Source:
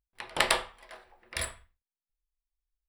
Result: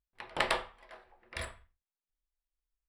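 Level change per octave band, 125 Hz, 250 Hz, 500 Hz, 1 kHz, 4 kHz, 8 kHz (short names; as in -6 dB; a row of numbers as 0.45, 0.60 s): -2.5, -2.5, -2.5, -3.0, -7.0, -13.0 dB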